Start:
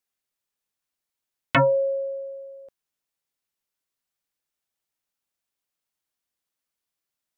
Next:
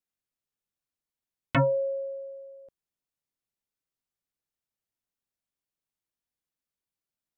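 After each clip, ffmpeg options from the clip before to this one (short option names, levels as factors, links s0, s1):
-af "lowshelf=f=400:g=9.5,volume=0.376"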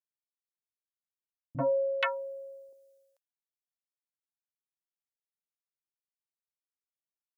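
-filter_complex "[0:a]bass=f=250:g=-12,treble=f=4000:g=12,agate=range=0.0224:threshold=0.00501:ratio=3:detection=peak,acrossover=split=210|890[s0][s1][s2];[s1]adelay=40[s3];[s2]adelay=480[s4];[s0][s3][s4]amix=inputs=3:normalize=0"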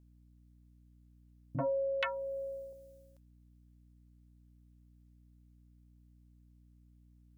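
-af "acompressor=threshold=0.00794:ratio=2.5,aeval=exprs='val(0)+0.000501*(sin(2*PI*60*n/s)+sin(2*PI*2*60*n/s)/2+sin(2*PI*3*60*n/s)/3+sin(2*PI*4*60*n/s)/4+sin(2*PI*5*60*n/s)/5)':c=same,volume=1.88"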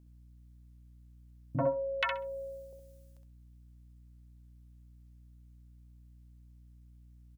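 -af "aecho=1:1:65|130|195:0.473|0.071|0.0106,volume=1.5"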